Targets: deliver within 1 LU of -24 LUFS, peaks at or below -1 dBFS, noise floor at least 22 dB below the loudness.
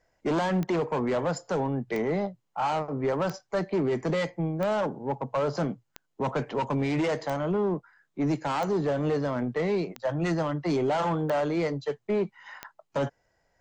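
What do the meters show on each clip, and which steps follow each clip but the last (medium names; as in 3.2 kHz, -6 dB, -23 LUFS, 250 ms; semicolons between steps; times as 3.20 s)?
clicks found 10; loudness -29.0 LUFS; peak level -16.0 dBFS; loudness target -24.0 LUFS
-> de-click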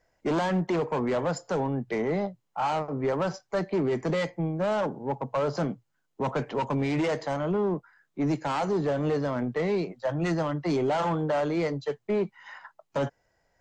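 clicks found 0; loudness -29.0 LUFS; peak level -18.5 dBFS; loudness target -24.0 LUFS
-> trim +5 dB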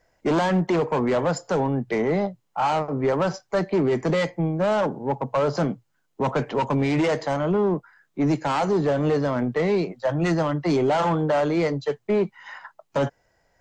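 loudness -24.0 LUFS; peak level -13.5 dBFS; noise floor -71 dBFS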